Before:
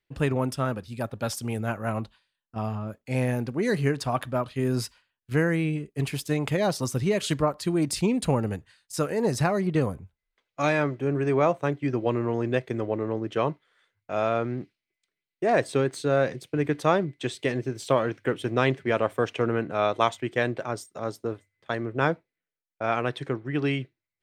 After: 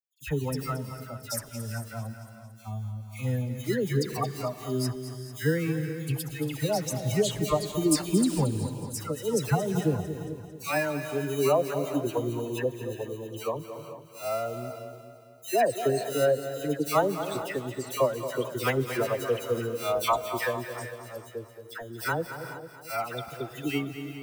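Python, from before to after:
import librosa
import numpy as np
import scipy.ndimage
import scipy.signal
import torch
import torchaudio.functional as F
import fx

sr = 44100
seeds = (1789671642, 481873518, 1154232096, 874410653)

p1 = fx.bin_expand(x, sr, power=2.0)
p2 = fx.sample_hold(p1, sr, seeds[0], rate_hz=3400.0, jitter_pct=0)
p3 = p1 + F.gain(torch.from_numpy(p2), -8.0).numpy()
p4 = fx.high_shelf(p3, sr, hz=6500.0, db=10.0)
p5 = fx.dispersion(p4, sr, late='lows', ms=111.0, hz=1500.0)
p6 = p5 + fx.echo_feedback(p5, sr, ms=225, feedback_pct=55, wet_db=-11.5, dry=0)
y = fx.rev_gated(p6, sr, seeds[1], gate_ms=450, shape='rising', drr_db=11.0)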